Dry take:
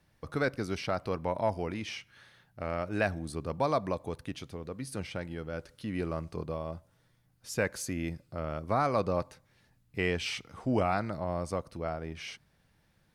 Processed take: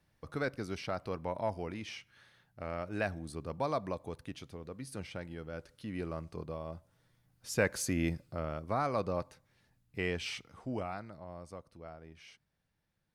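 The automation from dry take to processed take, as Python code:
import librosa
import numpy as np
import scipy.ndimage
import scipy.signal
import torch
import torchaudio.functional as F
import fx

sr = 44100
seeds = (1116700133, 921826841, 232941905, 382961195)

y = fx.gain(x, sr, db=fx.line((6.58, -5.0), (8.06, 3.0), (8.67, -4.5), (10.33, -4.5), (11.11, -13.5)))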